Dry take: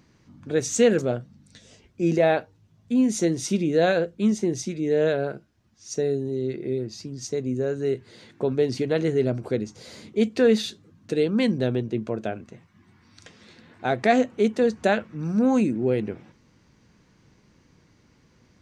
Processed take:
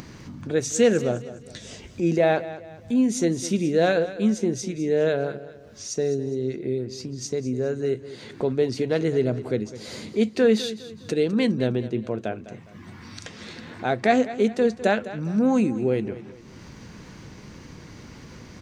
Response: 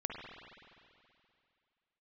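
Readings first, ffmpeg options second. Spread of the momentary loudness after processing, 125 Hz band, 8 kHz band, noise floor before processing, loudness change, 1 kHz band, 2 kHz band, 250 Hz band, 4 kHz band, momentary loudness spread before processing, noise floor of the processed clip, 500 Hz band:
23 LU, +0.5 dB, +0.5 dB, -60 dBFS, 0.0 dB, 0.0 dB, +0.5 dB, 0.0 dB, +0.5 dB, 11 LU, -45 dBFS, 0.0 dB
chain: -filter_complex "[0:a]acompressor=mode=upward:threshold=-28dB:ratio=2.5,asplit=2[a][b];[b]aecho=0:1:205|410|615:0.178|0.0658|0.0243[c];[a][c]amix=inputs=2:normalize=0"

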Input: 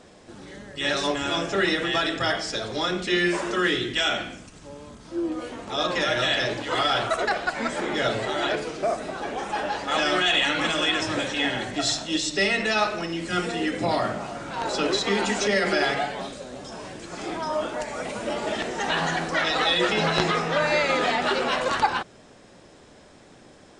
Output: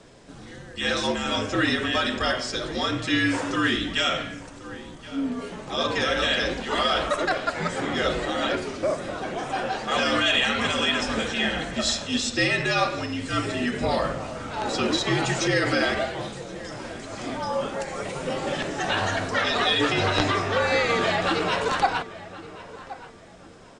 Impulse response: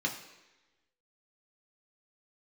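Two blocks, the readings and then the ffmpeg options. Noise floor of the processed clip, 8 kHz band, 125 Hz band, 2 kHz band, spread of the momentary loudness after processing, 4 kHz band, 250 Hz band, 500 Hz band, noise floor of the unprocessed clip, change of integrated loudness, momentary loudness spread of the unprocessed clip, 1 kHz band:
-44 dBFS, 0.0 dB, +3.5 dB, 0.0 dB, 14 LU, 0.0 dB, +1.0 dB, -0.5 dB, -51 dBFS, 0.0 dB, 12 LU, -0.5 dB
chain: -filter_complex "[0:a]asplit=2[a][b];[b]adelay=1074,lowpass=f=2.4k:p=1,volume=-16dB,asplit=2[c][d];[d]adelay=1074,lowpass=f=2.4k:p=1,volume=0.31,asplit=2[e][f];[f]adelay=1074,lowpass=f=2.4k:p=1,volume=0.31[g];[a][c][e][g]amix=inputs=4:normalize=0,afreqshift=-66"

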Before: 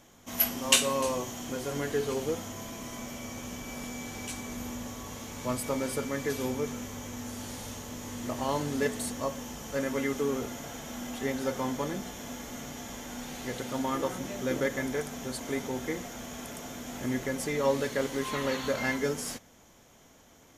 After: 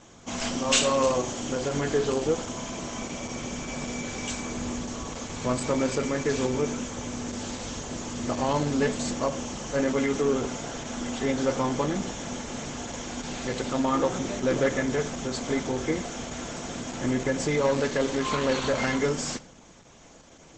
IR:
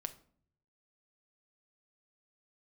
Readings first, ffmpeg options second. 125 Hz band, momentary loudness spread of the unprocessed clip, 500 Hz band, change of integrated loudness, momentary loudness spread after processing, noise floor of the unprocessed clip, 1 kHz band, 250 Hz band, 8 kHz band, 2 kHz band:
+6.0 dB, 11 LU, +5.5 dB, +4.5 dB, 10 LU, -58 dBFS, +5.0 dB, +5.5 dB, +3.0 dB, +3.0 dB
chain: -filter_complex "[0:a]bandreject=f=1.9k:w=12,aeval=exprs='(tanh(12.6*val(0)+0.15)-tanh(0.15))/12.6':c=same,asplit=2[a][b];[1:a]atrim=start_sample=2205[c];[b][c]afir=irnorm=-1:irlink=0,volume=5.5dB[d];[a][d]amix=inputs=2:normalize=0" -ar 48000 -c:a libopus -b:a 12k

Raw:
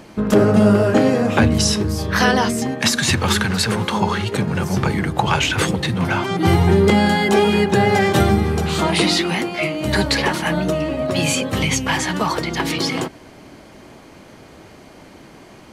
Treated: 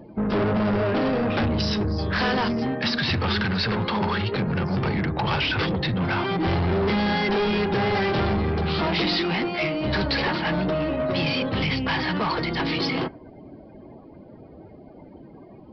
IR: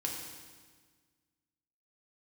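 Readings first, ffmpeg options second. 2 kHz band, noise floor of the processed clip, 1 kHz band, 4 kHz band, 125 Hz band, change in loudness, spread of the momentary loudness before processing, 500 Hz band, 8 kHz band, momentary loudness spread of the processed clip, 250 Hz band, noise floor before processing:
-5.0 dB, -46 dBFS, -6.0 dB, -5.0 dB, -6.0 dB, -6.0 dB, 7 LU, -6.5 dB, under -25 dB, 3 LU, -6.0 dB, -43 dBFS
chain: -af "afftdn=nr=24:nf=-40,aresample=11025,asoftclip=type=tanh:threshold=-20dB,aresample=44100"

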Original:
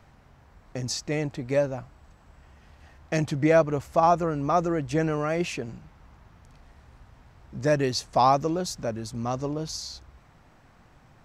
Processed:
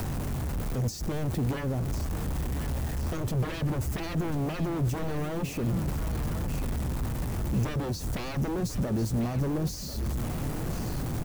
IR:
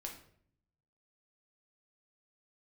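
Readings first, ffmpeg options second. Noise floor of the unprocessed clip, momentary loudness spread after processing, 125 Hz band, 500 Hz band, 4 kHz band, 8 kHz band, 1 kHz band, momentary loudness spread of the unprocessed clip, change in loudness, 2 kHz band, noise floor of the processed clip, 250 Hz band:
-57 dBFS, 4 LU, +4.5 dB, -9.5 dB, -5.5 dB, -2.5 dB, -12.5 dB, 14 LU, -5.0 dB, -5.5 dB, -36 dBFS, -1.0 dB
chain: -filter_complex "[0:a]aeval=exprs='val(0)+0.5*0.0335*sgn(val(0))':c=same,tiltshelf=f=810:g=4.5,acrossover=split=4900[a][b];[a]aeval=exprs='0.0794*(abs(mod(val(0)/0.0794+3,4)-2)-1)':c=same[c];[b]crystalizer=i=1.5:c=0[d];[c][d]amix=inputs=2:normalize=0,alimiter=limit=-23dB:level=0:latency=1:release=74,acontrast=87,aecho=1:1:1042|2084|3126|4168|5210:0.237|0.109|0.0502|0.0231|0.0106,acrossover=split=430[e][f];[f]acompressor=threshold=-34dB:ratio=4[g];[e][g]amix=inputs=2:normalize=0,volume=-5.5dB"

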